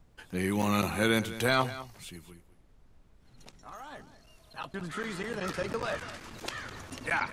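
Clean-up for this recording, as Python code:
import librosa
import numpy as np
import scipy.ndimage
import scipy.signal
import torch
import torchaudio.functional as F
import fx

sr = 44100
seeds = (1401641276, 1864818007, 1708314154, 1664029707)

y = fx.fix_interpolate(x, sr, at_s=(0.62, 5.82), length_ms=6.8)
y = fx.noise_reduce(y, sr, print_start_s=2.41, print_end_s=2.91, reduce_db=17.0)
y = fx.fix_echo_inverse(y, sr, delay_ms=205, level_db=-15.0)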